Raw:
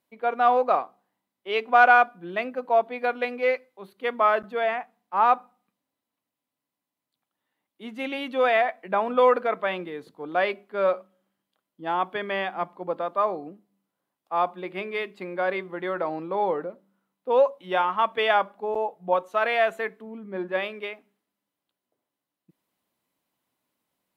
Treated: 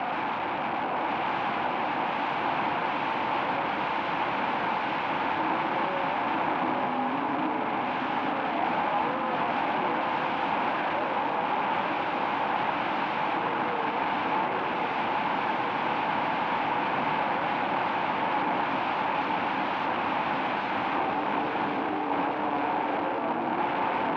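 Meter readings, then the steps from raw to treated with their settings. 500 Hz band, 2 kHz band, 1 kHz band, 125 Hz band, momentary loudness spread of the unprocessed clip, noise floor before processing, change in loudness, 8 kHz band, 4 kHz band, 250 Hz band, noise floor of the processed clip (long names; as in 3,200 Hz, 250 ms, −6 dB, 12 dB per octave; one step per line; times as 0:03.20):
−6.5 dB, −1.5 dB, +0.5 dB, +7.0 dB, 14 LU, below −85 dBFS, −3.0 dB, can't be measured, +2.0 dB, +5.5 dB, −30 dBFS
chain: peak hold with a rise ahead of every peak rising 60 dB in 1.79 s
compressor whose output falls as the input rises −24 dBFS, ratio −1
frequency shifter +17 Hz
asymmetric clip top −26 dBFS
delay with pitch and tempo change per echo 118 ms, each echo −4 semitones, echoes 3
wrap-around overflow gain 22 dB
loudspeaker in its box 210–2,300 Hz, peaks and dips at 290 Hz +3 dB, 420 Hz −9 dB, 610 Hz −3 dB, 870 Hz +8 dB, 1,300 Hz −4 dB, 1,900 Hz −8 dB
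on a send: feedback echo with a long and a short gap by turns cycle 1,112 ms, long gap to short 3 to 1, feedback 53%, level −5 dB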